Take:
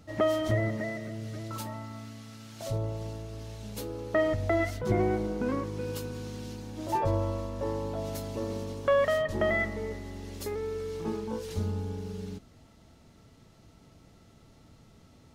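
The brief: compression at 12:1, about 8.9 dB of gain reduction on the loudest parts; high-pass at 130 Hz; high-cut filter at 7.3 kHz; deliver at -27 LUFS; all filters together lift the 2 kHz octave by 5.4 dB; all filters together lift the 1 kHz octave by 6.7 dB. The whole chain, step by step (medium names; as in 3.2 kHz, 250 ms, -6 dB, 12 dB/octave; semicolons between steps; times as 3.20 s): high-pass 130 Hz; low-pass 7.3 kHz; peaking EQ 1 kHz +7.5 dB; peaking EQ 2 kHz +4 dB; compression 12:1, threshold -26 dBFS; trim +6.5 dB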